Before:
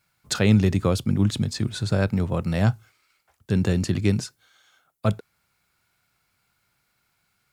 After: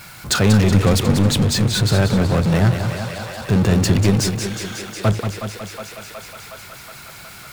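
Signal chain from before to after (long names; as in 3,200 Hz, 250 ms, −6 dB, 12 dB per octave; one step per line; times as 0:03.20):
feedback echo with a high-pass in the loop 183 ms, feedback 79%, high-pass 280 Hz, level −20.5 dB
power curve on the samples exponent 0.5
feedback echo with a swinging delay time 187 ms, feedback 51%, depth 108 cents, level −8 dB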